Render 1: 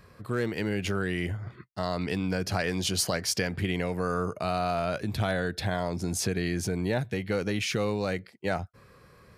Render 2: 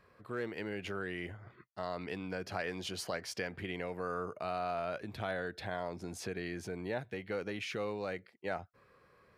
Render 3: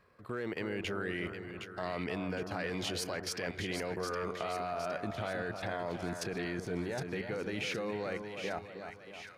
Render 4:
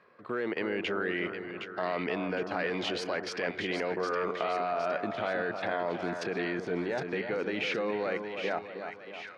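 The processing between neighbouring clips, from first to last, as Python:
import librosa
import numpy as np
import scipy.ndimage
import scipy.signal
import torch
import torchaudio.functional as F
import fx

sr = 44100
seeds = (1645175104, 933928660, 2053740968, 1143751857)

y1 = fx.bass_treble(x, sr, bass_db=-9, treble_db=-10)
y1 = y1 * 10.0 ** (-7.0 / 20.0)
y2 = fx.level_steps(y1, sr, step_db=15)
y2 = fx.echo_split(y2, sr, split_hz=1400.0, low_ms=315, high_ms=764, feedback_pct=52, wet_db=-7.0)
y2 = y2 * 10.0 ** (8.0 / 20.0)
y3 = fx.bandpass_edges(y2, sr, low_hz=230.0, high_hz=3500.0)
y3 = y3 * 10.0 ** (6.0 / 20.0)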